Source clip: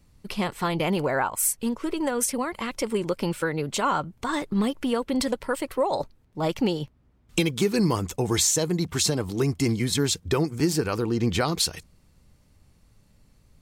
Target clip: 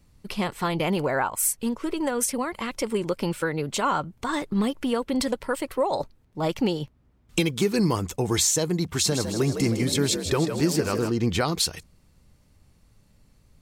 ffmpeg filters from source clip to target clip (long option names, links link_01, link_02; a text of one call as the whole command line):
ffmpeg -i in.wav -filter_complex "[0:a]asettb=1/sr,asplit=3[link_01][link_02][link_03];[link_01]atrim=end=8.954[link_04];[link_02]atrim=start=8.95:end=11.1,asetpts=PTS-STARTPTS,afade=type=in:duration=0.004:curve=qsin,afade=type=out:start_time=2.146:duration=0.004:curve=qsin,asplit=8[link_05][link_06][link_07][link_08][link_09][link_10][link_11][link_12];[link_06]adelay=157,afreqshift=56,volume=-8.5dB[link_13];[link_07]adelay=314,afreqshift=112,volume=-13.2dB[link_14];[link_08]adelay=471,afreqshift=168,volume=-18dB[link_15];[link_09]adelay=628,afreqshift=224,volume=-22.7dB[link_16];[link_10]adelay=785,afreqshift=280,volume=-27.4dB[link_17];[link_11]adelay=942,afreqshift=336,volume=-32.2dB[link_18];[link_12]adelay=1099,afreqshift=392,volume=-36.9dB[link_19];[link_05][link_13][link_14][link_15][link_16][link_17][link_18][link_19]amix=inputs=8:normalize=0,atrim=end_sample=94815[link_20];[link_03]atrim=start=11.096[link_21];[link_04][link_20]acrossfade=duration=0.004:curve1=hsin:curve2=qsin[link_22];[link_22][link_21]acrossfade=duration=0.004:curve1=qsin:curve2=hsin" out.wav